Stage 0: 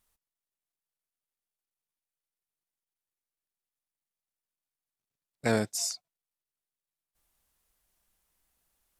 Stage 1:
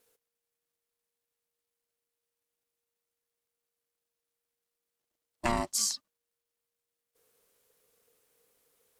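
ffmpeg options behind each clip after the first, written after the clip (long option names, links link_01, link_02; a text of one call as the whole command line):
ffmpeg -i in.wav -af "acompressor=threshold=-29dB:ratio=10,aeval=exprs='val(0)*sin(2*PI*470*n/s)':channel_layout=same,volume=7.5dB" out.wav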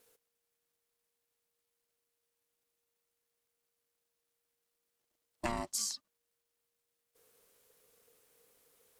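ffmpeg -i in.wav -af "acompressor=threshold=-39dB:ratio=2.5,volume=2.5dB" out.wav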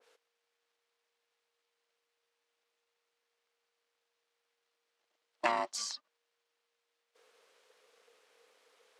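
ffmpeg -i in.wav -af "highpass=540,lowpass=4200,adynamicequalizer=threshold=0.00178:dfrequency=1900:dqfactor=0.7:tfrequency=1900:tqfactor=0.7:attack=5:release=100:ratio=0.375:range=2.5:mode=cutabove:tftype=highshelf,volume=8dB" out.wav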